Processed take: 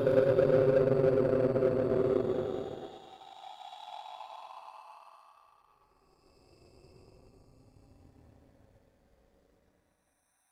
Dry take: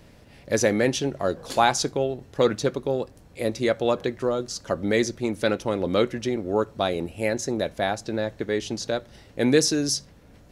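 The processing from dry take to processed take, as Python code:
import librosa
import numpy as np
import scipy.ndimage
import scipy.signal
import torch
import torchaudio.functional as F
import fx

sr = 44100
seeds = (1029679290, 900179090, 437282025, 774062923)

p1 = fx.spec_dropout(x, sr, seeds[0], share_pct=26)
p2 = 10.0 ** (-20.0 / 20.0) * np.tanh(p1 / 10.0 ** (-20.0 / 20.0))
p3 = p1 + (p2 * 10.0 ** (-4.0 / 20.0))
p4 = fx.paulstretch(p3, sr, seeds[1], factor=40.0, window_s=0.05, from_s=2.91)
p5 = p4 + fx.echo_feedback(p4, sr, ms=114, feedback_pct=58, wet_db=-9.5, dry=0)
p6 = fx.power_curve(p5, sr, exponent=1.4)
y = p6 * 10.0 ** (-3.0 / 20.0)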